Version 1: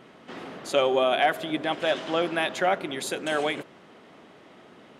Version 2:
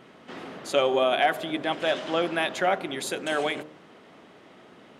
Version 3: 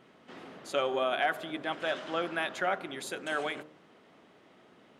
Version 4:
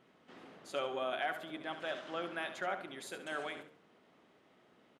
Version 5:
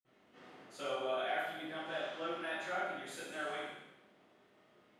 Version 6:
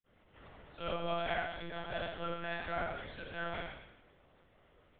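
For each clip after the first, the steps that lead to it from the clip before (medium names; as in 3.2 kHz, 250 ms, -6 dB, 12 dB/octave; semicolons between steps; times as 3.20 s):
de-hum 76.19 Hz, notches 15
dynamic bell 1.4 kHz, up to +6 dB, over -42 dBFS, Q 1.9; trim -8 dB
feedback delay 70 ms, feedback 28%, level -10.5 dB; trim -7.5 dB
reverberation RT60 0.95 s, pre-delay 47 ms; trim +10 dB
monotone LPC vocoder at 8 kHz 170 Hz; trim +1 dB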